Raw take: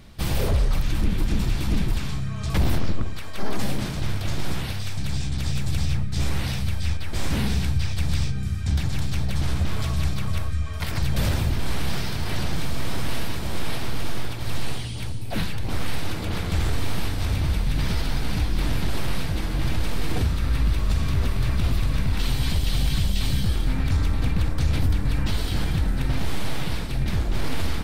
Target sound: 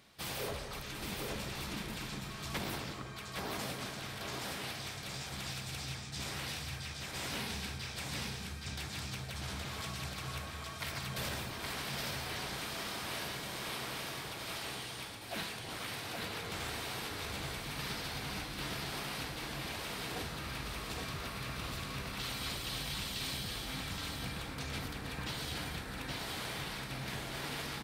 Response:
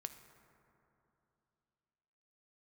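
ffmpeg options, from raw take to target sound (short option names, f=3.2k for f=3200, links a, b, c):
-filter_complex "[0:a]highpass=f=630:p=1,aecho=1:1:820:0.668[a];[1:a]atrim=start_sample=2205[b];[a][b]afir=irnorm=-1:irlink=0,volume=-3dB"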